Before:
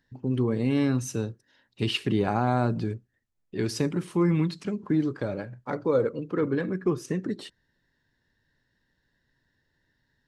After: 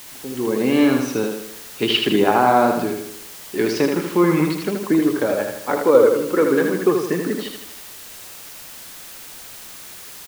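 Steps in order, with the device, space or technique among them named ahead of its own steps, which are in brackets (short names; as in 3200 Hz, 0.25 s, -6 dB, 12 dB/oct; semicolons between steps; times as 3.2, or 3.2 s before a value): dictaphone (BPF 320–3600 Hz; AGC; wow and flutter; white noise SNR 18 dB); feedback echo 79 ms, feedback 49%, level -5 dB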